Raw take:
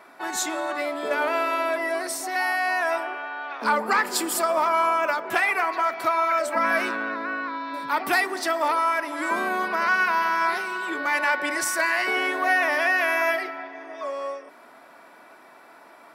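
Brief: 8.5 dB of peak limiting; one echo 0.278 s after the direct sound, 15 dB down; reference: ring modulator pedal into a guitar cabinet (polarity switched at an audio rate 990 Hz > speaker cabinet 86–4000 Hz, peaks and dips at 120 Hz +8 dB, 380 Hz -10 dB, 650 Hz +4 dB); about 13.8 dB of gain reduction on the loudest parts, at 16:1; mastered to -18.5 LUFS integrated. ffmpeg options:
-af "acompressor=threshold=-31dB:ratio=16,alimiter=level_in=4dB:limit=-24dB:level=0:latency=1,volume=-4dB,aecho=1:1:278:0.178,aeval=exprs='val(0)*sgn(sin(2*PI*990*n/s))':c=same,highpass=86,equalizer=f=120:t=q:w=4:g=8,equalizer=f=380:t=q:w=4:g=-10,equalizer=f=650:t=q:w=4:g=4,lowpass=f=4k:w=0.5412,lowpass=f=4k:w=1.3066,volume=18dB"

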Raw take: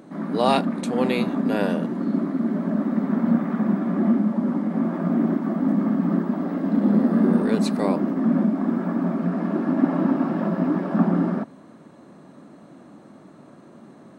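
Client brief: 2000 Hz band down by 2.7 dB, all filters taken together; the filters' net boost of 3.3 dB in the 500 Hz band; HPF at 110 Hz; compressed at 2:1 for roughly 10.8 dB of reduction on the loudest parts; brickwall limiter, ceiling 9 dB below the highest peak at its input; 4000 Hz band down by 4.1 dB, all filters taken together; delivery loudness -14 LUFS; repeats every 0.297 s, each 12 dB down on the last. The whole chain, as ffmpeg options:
-af "highpass=110,equalizer=f=500:t=o:g=4.5,equalizer=f=2k:t=o:g=-3,equalizer=f=4k:t=o:g=-4,acompressor=threshold=-33dB:ratio=2,alimiter=level_in=0.5dB:limit=-24dB:level=0:latency=1,volume=-0.5dB,aecho=1:1:297|594|891:0.251|0.0628|0.0157,volume=18.5dB"

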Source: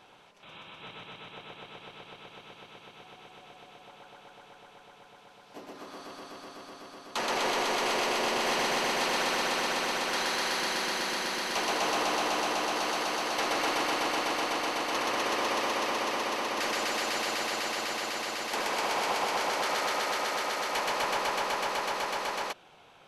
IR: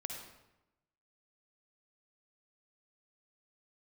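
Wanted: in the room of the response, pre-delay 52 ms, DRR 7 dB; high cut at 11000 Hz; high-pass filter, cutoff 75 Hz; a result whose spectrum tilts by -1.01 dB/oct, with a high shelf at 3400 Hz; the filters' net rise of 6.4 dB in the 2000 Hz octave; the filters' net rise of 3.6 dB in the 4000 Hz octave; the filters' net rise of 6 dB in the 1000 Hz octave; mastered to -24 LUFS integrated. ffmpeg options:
-filter_complex "[0:a]highpass=75,lowpass=11k,equalizer=f=1k:t=o:g=6,equalizer=f=2k:t=o:g=6.5,highshelf=f=3.4k:g=-6,equalizer=f=4k:t=o:g=6,asplit=2[a][b];[1:a]atrim=start_sample=2205,adelay=52[c];[b][c]afir=irnorm=-1:irlink=0,volume=-6dB[d];[a][d]amix=inputs=2:normalize=0"

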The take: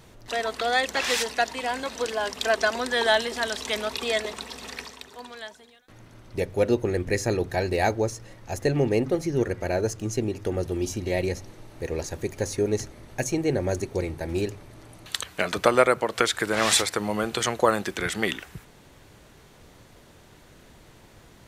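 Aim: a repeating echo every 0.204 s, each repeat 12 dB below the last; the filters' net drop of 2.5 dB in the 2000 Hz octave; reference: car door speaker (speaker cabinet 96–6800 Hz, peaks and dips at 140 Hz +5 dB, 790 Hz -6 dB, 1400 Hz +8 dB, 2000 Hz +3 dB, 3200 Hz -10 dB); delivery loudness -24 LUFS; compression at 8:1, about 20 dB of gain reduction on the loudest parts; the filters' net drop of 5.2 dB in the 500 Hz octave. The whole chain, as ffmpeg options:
-af "equalizer=f=500:t=o:g=-5.5,equalizer=f=2k:t=o:g=-8.5,acompressor=threshold=-39dB:ratio=8,highpass=96,equalizer=f=140:t=q:w=4:g=5,equalizer=f=790:t=q:w=4:g=-6,equalizer=f=1.4k:t=q:w=4:g=8,equalizer=f=2k:t=q:w=4:g=3,equalizer=f=3.2k:t=q:w=4:g=-10,lowpass=f=6.8k:w=0.5412,lowpass=f=6.8k:w=1.3066,aecho=1:1:204|408|612:0.251|0.0628|0.0157,volume=19dB"

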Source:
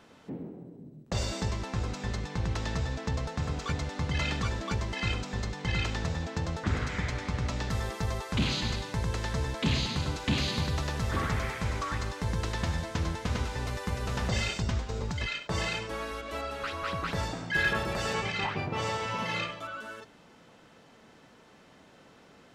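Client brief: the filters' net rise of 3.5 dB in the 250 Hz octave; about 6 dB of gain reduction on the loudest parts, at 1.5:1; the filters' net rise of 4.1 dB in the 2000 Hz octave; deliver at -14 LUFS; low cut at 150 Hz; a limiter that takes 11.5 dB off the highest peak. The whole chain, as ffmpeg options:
-af "highpass=150,equalizer=f=250:t=o:g=6,equalizer=f=2k:t=o:g=5,acompressor=threshold=-37dB:ratio=1.5,volume=24.5dB,alimiter=limit=-5dB:level=0:latency=1"

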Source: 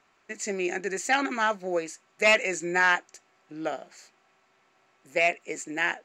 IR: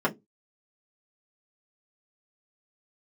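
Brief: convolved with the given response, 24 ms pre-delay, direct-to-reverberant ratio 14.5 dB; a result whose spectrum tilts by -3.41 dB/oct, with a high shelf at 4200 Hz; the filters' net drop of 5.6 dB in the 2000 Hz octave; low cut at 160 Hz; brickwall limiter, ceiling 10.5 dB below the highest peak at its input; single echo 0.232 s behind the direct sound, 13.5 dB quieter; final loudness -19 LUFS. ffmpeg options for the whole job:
-filter_complex "[0:a]highpass=160,equalizer=f=2k:t=o:g=-6,highshelf=f=4.2k:g=-5,alimiter=level_in=0.5dB:limit=-24dB:level=0:latency=1,volume=-0.5dB,aecho=1:1:232:0.211,asplit=2[a][b];[1:a]atrim=start_sample=2205,adelay=24[c];[b][c]afir=irnorm=-1:irlink=0,volume=-27dB[d];[a][d]amix=inputs=2:normalize=0,volume=16dB"

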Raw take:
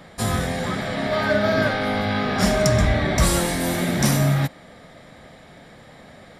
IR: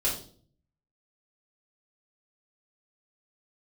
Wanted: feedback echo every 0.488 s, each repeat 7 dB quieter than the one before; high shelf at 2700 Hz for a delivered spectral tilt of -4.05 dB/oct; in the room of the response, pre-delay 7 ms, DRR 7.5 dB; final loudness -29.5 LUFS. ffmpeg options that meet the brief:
-filter_complex "[0:a]highshelf=f=2.7k:g=5,aecho=1:1:488|976|1464|1952|2440:0.447|0.201|0.0905|0.0407|0.0183,asplit=2[a][b];[1:a]atrim=start_sample=2205,adelay=7[c];[b][c]afir=irnorm=-1:irlink=0,volume=-15.5dB[d];[a][d]amix=inputs=2:normalize=0,volume=-10.5dB"

